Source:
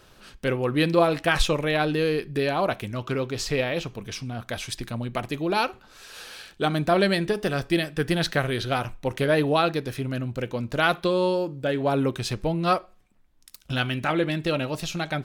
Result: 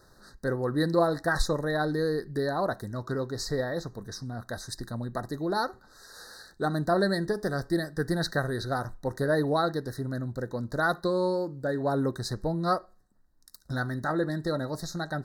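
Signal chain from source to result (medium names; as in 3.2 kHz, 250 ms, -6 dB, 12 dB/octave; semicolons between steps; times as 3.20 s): Chebyshev band-stop 1.9–3.8 kHz, order 5; trim -3.5 dB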